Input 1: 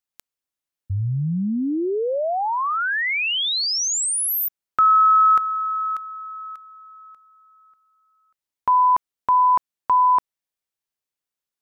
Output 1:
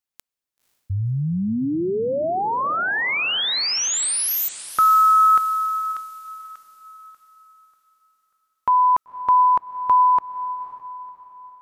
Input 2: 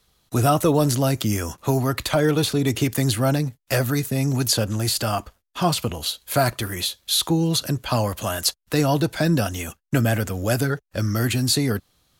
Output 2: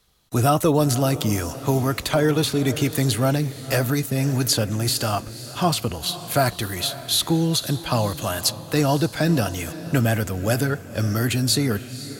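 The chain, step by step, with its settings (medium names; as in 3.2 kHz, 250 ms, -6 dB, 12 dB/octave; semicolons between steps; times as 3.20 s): echo that smears into a reverb 519 ms, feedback 43%, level -14 dB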